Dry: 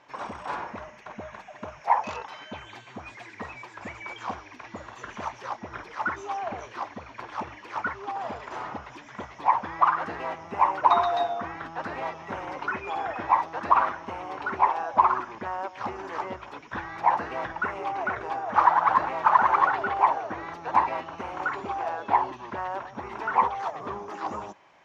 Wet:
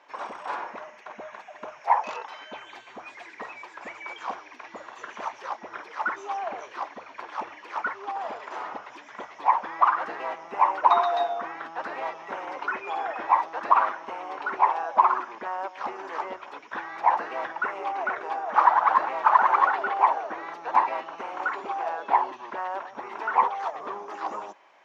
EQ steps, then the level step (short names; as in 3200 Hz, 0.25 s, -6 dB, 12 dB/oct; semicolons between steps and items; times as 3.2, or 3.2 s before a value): HPF 380 Hz 12 dB/oct; high shelf 5100 Hz -4.5 dB; +1.0 dB